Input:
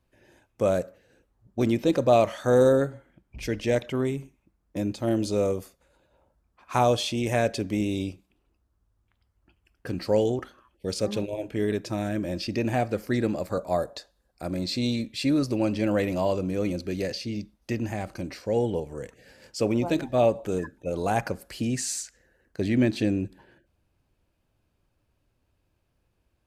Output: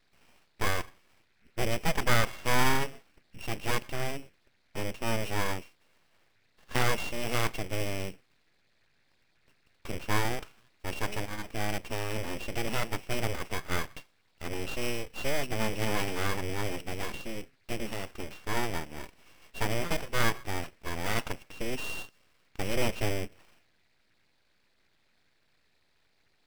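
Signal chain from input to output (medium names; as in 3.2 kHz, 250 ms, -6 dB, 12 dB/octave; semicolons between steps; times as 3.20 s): sorted samples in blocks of 16 samples; band noise 1.4–2.6 kHz -68 dBFS; full-wave rectifier; trim -2.5 dB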